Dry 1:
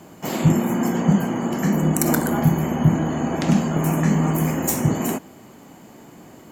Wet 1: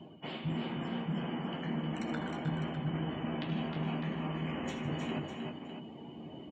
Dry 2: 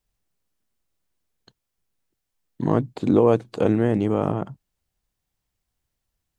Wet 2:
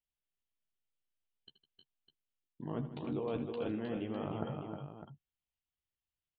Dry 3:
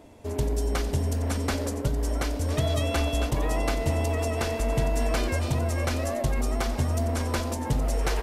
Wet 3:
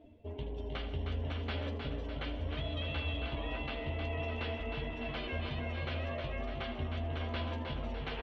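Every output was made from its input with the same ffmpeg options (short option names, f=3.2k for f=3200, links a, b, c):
-filter_complex "[0:a]lowpass=f=3.1k:t=q:w=3.4,afftdn=nr=18:nf=-42,areverse,acompressor=threshold=-35dB:ratio=4,areverse,asplit=2[a][b];[b]adelay=13,volume=-8.5dB[c];[a][c]amix=inputs=2:normalize=0,aecho=1:1:75|80|156|311|332|604:0.133|0.2|0.158|0.501|0.299|0.299,volume=-3.5dB"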